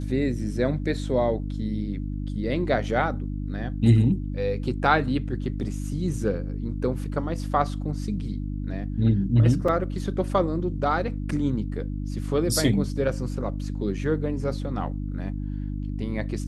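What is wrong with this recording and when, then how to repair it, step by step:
hum 50 Hz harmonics 6 -30 dBFS
9.68 gap 3.9 ms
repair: de-hum 50 Hz, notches 6; interpolate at 9.68, 3.9 ms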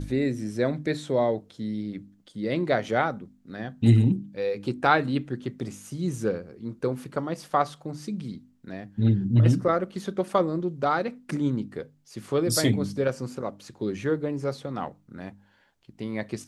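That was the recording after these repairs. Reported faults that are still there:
none

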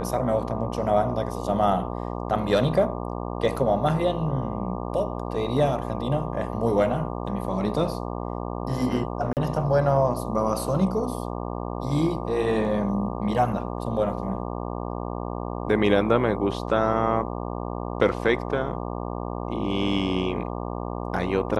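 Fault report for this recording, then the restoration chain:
buzz 60 Hz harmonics 20 -31 dBFS
9.33–9.37 gap 38 ms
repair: de-hum 60 Hz, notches 20; interpolate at 9.33, 38 ms

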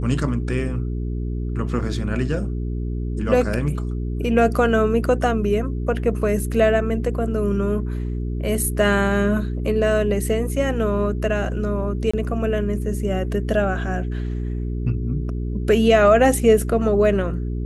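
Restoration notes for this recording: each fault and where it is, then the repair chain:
hum 60 Hz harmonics 7 -25 dBFS
12.11–12.13 gap 25 ms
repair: de-hum 60 Hz, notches 7; interpolate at 12.11, 25 ms

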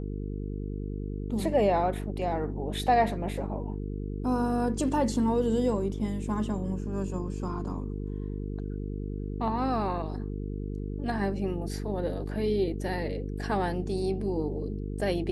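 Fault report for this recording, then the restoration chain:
buzz 50 Hz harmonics 9 -34 dBFS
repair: de-hum 50 Hz, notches 9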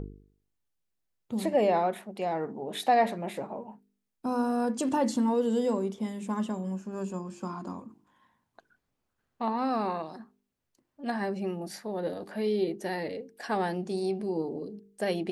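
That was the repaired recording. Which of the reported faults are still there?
none

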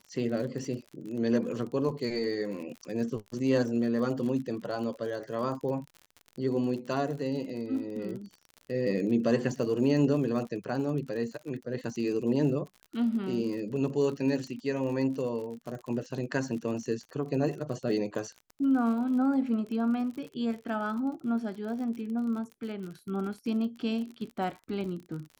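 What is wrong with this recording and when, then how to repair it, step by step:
crackle 48/s -38 dBFS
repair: de-click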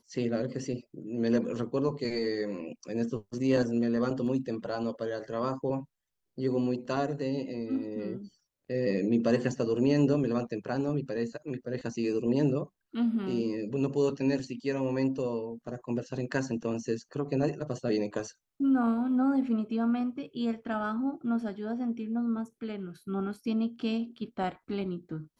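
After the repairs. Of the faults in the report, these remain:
none

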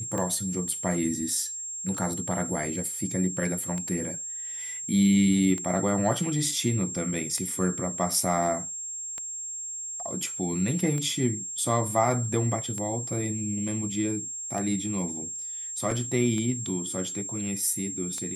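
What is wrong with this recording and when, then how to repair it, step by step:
tick 33 1/3 rpm -20 dBFS
tone 7500 Hz -33 dBFS
15.91 gap 2.6 ms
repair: de-click; notch 7500 Hz, Q 30; interpolate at 15.91, 2.6 ms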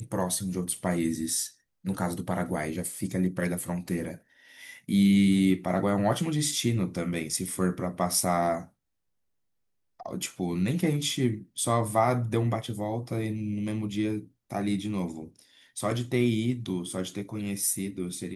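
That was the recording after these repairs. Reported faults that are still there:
none

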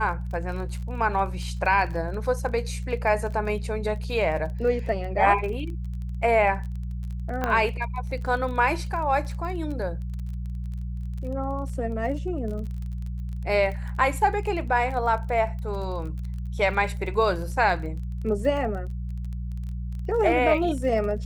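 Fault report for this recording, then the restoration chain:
crackle 28/s -34 dBFS
hum 60 Hz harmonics 3 -31 dBFS
7.44 pop -13 dBFS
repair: de-click; de-hum 60 Hz, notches 3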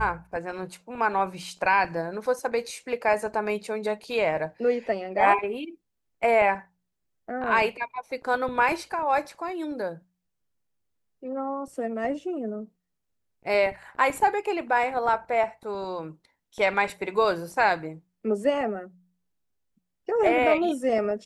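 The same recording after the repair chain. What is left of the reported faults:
none

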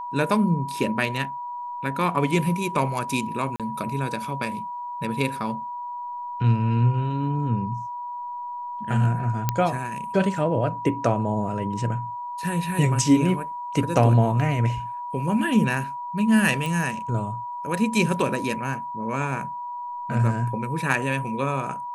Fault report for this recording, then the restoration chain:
tone 970 Hz -30 dBFS
3.56–3.6 gap 37 ms
9.49 pop -7 dBFS
16.66 pop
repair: de-click; notch 970 Hz, Q 30; interpolate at 3.56, 37 ms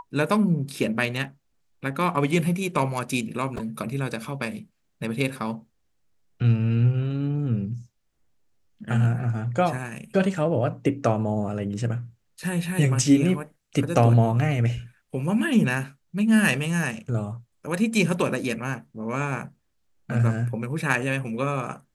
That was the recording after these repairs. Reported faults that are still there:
none

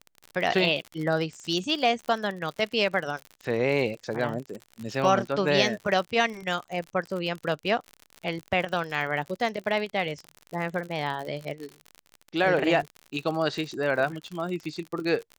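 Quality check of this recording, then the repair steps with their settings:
crackle 58/s -32 dBFS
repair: de-click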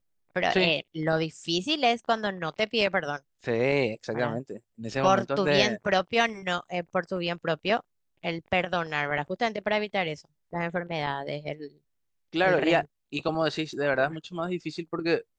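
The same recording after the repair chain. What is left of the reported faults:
none

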